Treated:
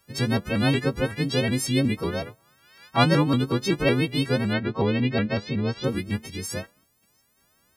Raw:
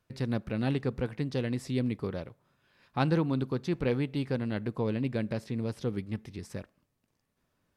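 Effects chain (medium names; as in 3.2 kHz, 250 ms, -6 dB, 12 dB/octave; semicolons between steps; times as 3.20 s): partials quantised in pitch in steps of 3 st; 4.53–5.84 s: low-pass 4.4 kHz 24 dB/octave; vibrato with a chosen wave saw up 5.4 Hz, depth 160 cents; trim +7.5 dB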